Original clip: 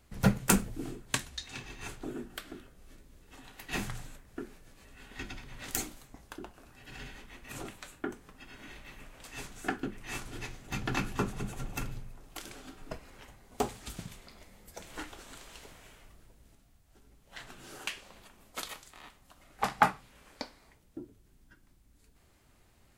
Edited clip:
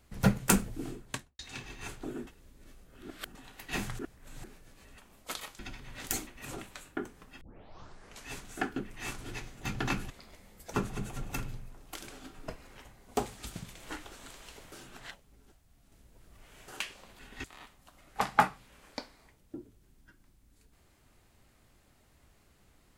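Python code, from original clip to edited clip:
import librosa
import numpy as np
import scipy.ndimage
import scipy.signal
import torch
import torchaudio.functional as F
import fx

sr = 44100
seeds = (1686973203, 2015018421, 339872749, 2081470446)

y = fx.studio_fade_out(x, sr, start_s=0.97, length_s=0.42)
y = fx.edit(y, sr, fx.reverse_span(start_s=2.27, length_s=1.08),
    fx.reverse_span(start_s=3.99, length_s=0.45),
    fx.swap(start_s=4.98, length_s=0.25, other_s=18.26, other_length_s=0.61),
    fx.cut(start_s=5.91, length_s=1.43),
    fx.tape_start(start_s=8.48, length_s=0.88),
    fx.move(start_s=14.18, length_s=0.64, to_s=11.17),
    fx.reverse_span(start_s=15.79, length_s=1.96), tone=tone)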